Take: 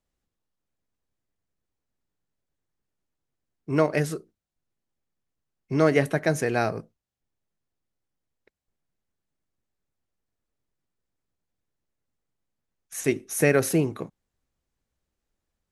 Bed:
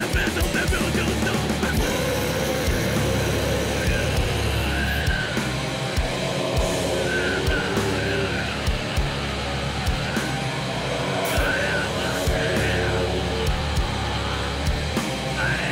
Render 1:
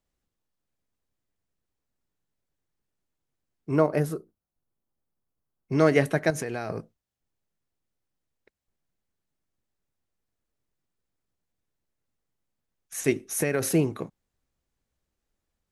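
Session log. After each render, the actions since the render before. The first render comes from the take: 3.76–5.72 s: high-order bell 3.8 kHz -8.5 dB 2.6 oct; 6.30–6.70 s: compression, threshold -27 dBFS; 13.23–13.70 s: compression, threshold -20 dBFS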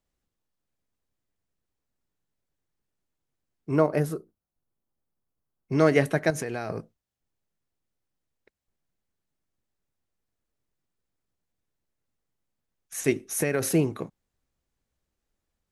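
no audible change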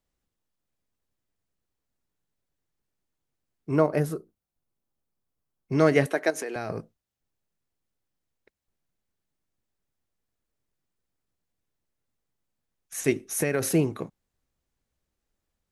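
6.06–6.56 s: high-pass 280 Hz 24 dB/octave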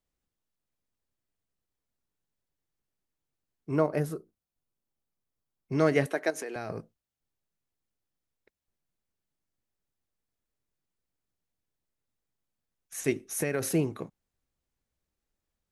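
trim -4 dB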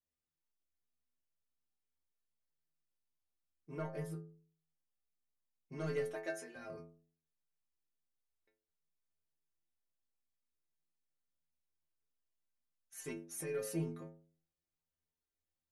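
saturation -17 dBFS, distortion -16 dB; inharmonic resonator 79 Hz, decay 0.6 s, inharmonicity 0.008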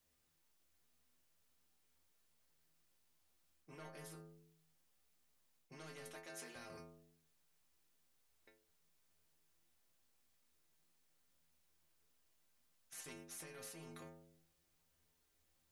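reverse; compression 6:1, threshold -47 dBFS, peak gain reduction 14 dB; reverse; spectrum-flattening compressor 2:1

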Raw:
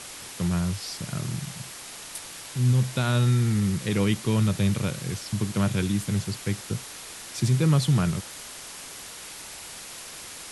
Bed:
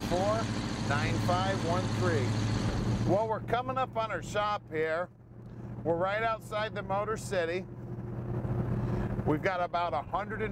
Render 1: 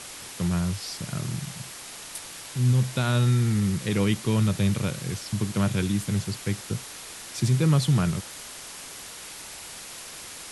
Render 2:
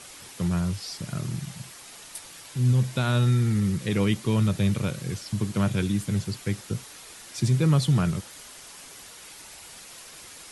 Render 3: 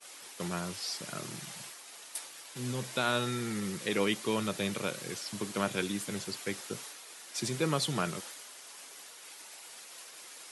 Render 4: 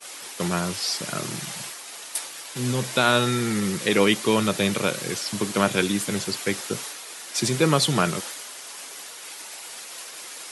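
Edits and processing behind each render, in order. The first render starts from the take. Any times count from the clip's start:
no audible change
noise reduction 6 dB, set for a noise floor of -41 dBFS
expander -40 dBFS; high-pass 360 Hz 12 dB/octave
trim +10.5 dB

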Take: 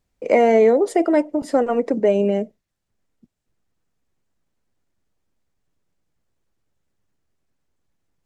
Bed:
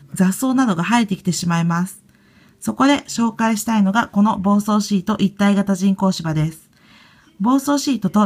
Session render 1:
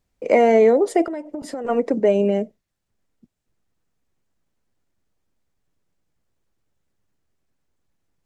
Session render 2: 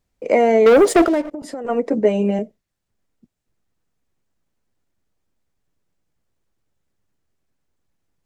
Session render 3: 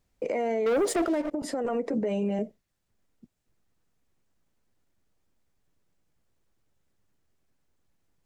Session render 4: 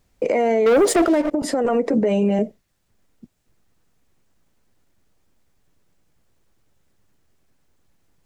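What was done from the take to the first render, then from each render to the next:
1.07–1.65 s: compression 12:1, threshold -25 dBFS
0.66–1.31 s: waveshaping leveller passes 3; 1.90–2.39 s: doubling 14 ms -3.5 dB
compression, threshold -18 dBFS, peak gain reduction 9 dB; peak limiter -20.5 dBFS, peak gain reduction 11 dB
trim +9.5 dB

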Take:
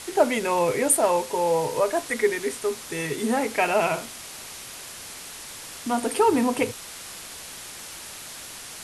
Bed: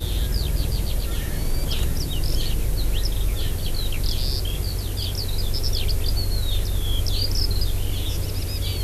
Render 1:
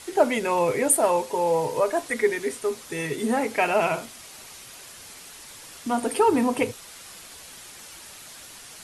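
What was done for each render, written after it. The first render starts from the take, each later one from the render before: noise reduction 6 dB, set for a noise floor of -40 dBFS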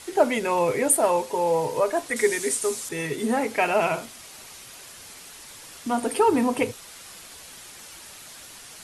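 2.16–2.89 s: peaking EQ 8.2 kHz +14 dB 1.4 oct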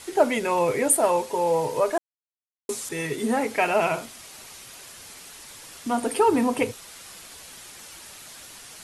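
1.98–2.69 s: mute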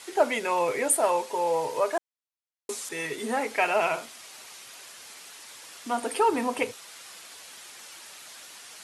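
high-pass 600 Hz 6 dB/octave; treble shelf 10 kHz -7.5 dB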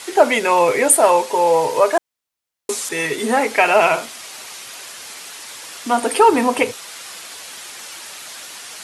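trim +11 dB; peak limiter -1 dBFS, peak gain reduction 2.5 dB

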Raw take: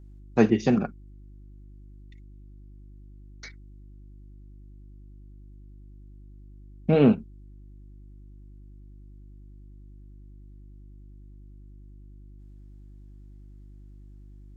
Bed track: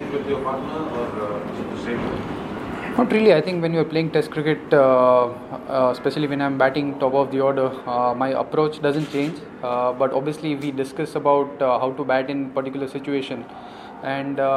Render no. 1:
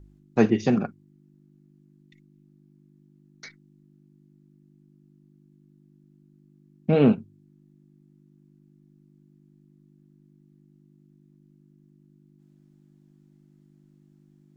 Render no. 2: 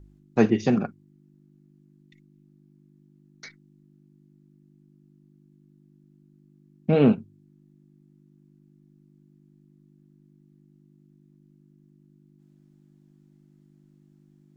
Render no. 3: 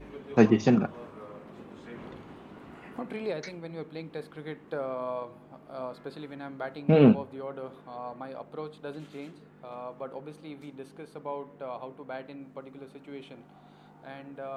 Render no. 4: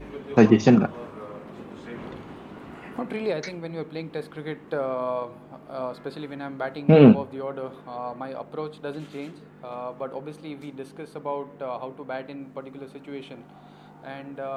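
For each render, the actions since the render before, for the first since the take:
de-hum 50 Hz, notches 2
no audible change
add bed track -19 dB
trim +6 dB; peak limiter -3 dBFS, peak gain reduction 3 dB

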